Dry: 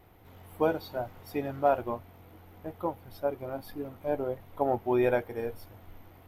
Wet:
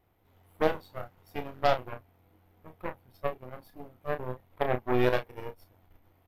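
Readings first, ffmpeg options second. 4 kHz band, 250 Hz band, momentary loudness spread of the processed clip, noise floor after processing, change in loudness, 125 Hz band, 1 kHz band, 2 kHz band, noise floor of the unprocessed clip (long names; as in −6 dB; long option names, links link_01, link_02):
+7.5 dB, −2.5 dB, 18 LU, −66 dBFS, −0.5 dB, +2.0 dB, −1.0 dB, +3.0 dB, −54 dBFS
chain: -filter_complex "[0:a]aeval=exprs='0.237*(cos(1*acos(clip(val(0)/0.237,-1,1)))-cos(1*PI/2))+0.0211*(cos(3*acos(clip(val(0)/0.237,-1,1)))-cos(3*PI/2))+0.0335*(cos(6*acos(clip(val(0)/0.237,-1,1)))-cos(6*PI/2))+0.0168*(cos(7*acos(clip(val(0)/0.237,-1,1)))-cos(7*PI/2))':channel_layout=same,asplit=2[link_01][link_02];[link_02]adelay=32,volume=-8.5dB[link_03];[link_01][link_03]amix=inputs=2:normalize=0"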